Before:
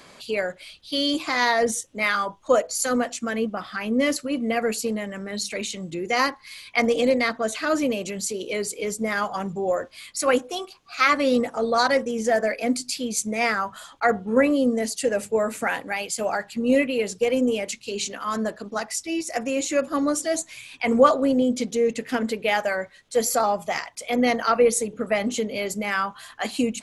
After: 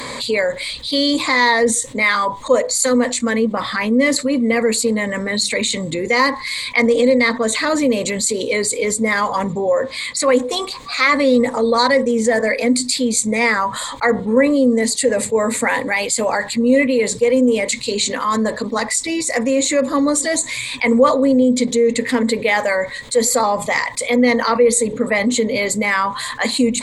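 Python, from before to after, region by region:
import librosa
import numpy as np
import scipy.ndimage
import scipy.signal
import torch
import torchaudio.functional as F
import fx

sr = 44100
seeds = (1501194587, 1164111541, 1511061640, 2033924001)

y = fx.chain(x, sr, fx.highpass(hz=83.0, slope=12),
    fx.high_shelf(hz=9700.0, db=-11.0), at=(9.44, 10.29))
y = fx.ripple_eq(y, sr, per_octave=1.0, db=11)
y = fx.env_flatten(y, sr, amount_pct=50)
y = y * 10.0 ** (-2.0 / 20.0)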